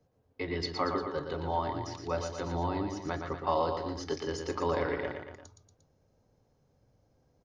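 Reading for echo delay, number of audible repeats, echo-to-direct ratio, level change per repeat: 117 ms, 3, −4.5 dB, −5.0 dB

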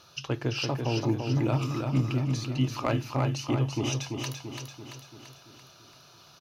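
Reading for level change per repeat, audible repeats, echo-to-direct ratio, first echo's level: −5.0 dB, 6, −3.5 dB, −5.0 dB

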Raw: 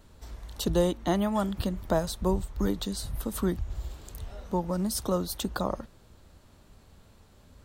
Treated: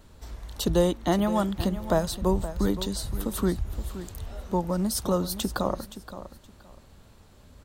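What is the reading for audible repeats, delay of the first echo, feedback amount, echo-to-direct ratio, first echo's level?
2, 521 ms, 21%, −13.0 dB, −13.0 dB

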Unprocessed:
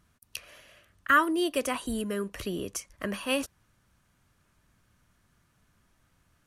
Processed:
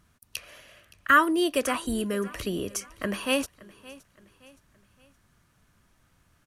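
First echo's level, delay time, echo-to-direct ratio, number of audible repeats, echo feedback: −20.5 dB, 569 ms, −19.5 dB, 2, 41%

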